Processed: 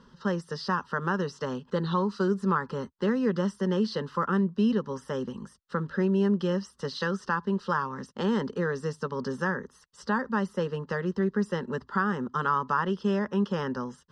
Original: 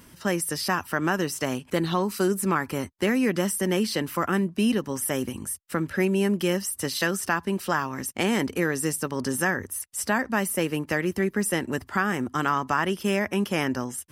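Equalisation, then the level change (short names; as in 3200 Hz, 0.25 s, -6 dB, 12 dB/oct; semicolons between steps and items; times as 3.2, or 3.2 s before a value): LPF 4400 Hz 24 dB/oct; fixed phaser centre 460 Hz, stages 8; 0.0 dB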